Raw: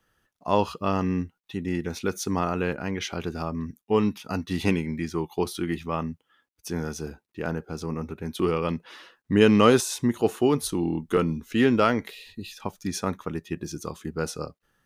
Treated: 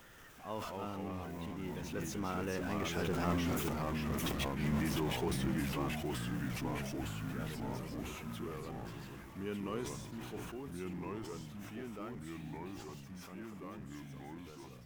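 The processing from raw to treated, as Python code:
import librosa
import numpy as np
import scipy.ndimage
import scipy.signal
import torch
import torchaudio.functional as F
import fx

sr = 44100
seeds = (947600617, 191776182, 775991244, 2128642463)

y = x + 0.5 * 10.0 ** (-28.5 / 20.0) * np.sign(x)
y = fx.doppler_pass(y, sr, speed_mps=18, closest_m=1.4, pass_at_s=3.98)
y = fx.over_compress(y, sr, threshold_db=-45.0, ratio=-0.5)
y = fx.peak_eq(y, sr, hz=11000.0, db=-5.5, octaves=1.0)
y = fx.echo_pitch(y, sr, ms=179, semitones=-2, count=3, db_per_echo=-3.0)
y = fx.peak_eq(y, sr, hz=4300.0, db=-6.5, octaves=0.53)
y = fx.sustainer(y, sr, db_per_s=33.0)
y = F.gain(torch.from_numpy(y), 6.5).numpy()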